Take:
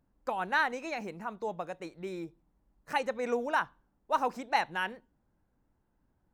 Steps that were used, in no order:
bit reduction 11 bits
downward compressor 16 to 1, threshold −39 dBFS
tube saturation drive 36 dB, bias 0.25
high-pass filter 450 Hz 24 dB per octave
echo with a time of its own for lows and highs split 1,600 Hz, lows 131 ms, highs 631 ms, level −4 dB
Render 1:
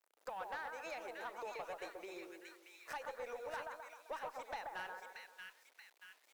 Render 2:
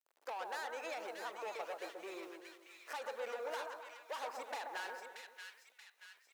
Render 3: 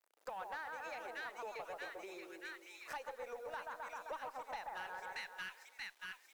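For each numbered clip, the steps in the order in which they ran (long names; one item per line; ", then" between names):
downward compressor, then echo with a time of its own for lows and highs, then bit reduction, then high-pass filter, then tube saturation
tube saturation, then bit reduction, then high-pass filter, then downward compressor, then echo with a time of its own for lows and highs
echo with a time of its own for lows and highs, then downward compressor, then bit reduction, then high-pass filter, then tube saturation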